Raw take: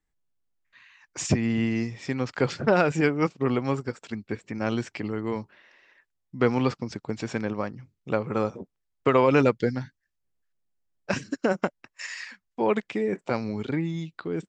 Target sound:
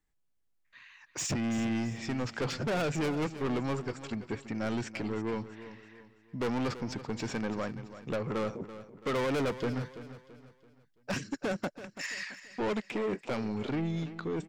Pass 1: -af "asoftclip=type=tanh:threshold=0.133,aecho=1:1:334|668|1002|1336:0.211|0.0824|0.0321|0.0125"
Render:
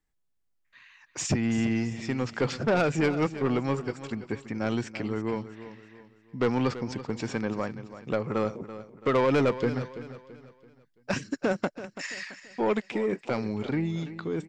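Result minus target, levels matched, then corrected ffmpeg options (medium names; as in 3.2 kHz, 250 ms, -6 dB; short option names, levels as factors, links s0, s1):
saturation: distortion -8 dB
-af "asoftclip=type=tanh:threshold=0.0398,aecho=1:1:334|668|1002|1336:0.211|0.0824|0.0321|0.0125"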